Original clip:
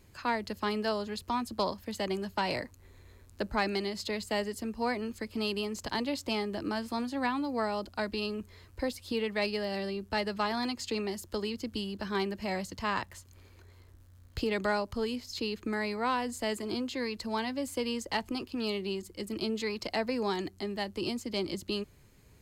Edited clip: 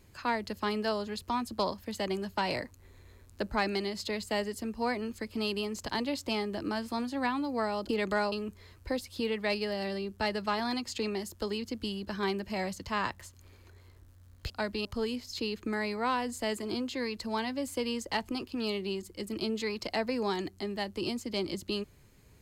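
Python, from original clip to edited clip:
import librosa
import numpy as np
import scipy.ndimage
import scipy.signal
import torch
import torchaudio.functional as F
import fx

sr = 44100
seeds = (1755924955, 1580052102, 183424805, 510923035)

y = fx.edit(x, sr, fx.swap(start_s=7.89, length_s=0.35, other_s=14.42, other_length_s=0.43), tone=tone)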